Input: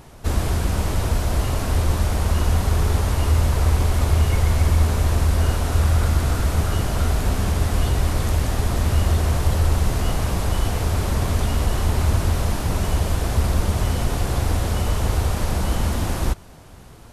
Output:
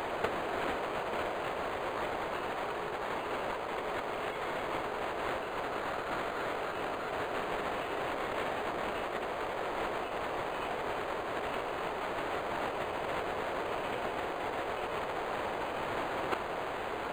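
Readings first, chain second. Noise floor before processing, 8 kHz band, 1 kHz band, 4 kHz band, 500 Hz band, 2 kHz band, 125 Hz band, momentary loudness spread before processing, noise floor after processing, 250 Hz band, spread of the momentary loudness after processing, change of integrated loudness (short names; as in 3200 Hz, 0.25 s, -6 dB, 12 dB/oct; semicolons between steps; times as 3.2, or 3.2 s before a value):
-42 dBFS, -23.5 dB, -4.0 dB, -11.5 dB, -5.0 dB, -4.5 dB, -32.0 dB, 4 LU, -38 dBFS, -14.0 dB, 1 LU, -14.0 dB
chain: HPF 380 Hz 24 dB/oct; negative-ratio compressor -37 dBFS, ratio -0.5; decimation joined by straight lines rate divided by 8×; gain +5.5 dB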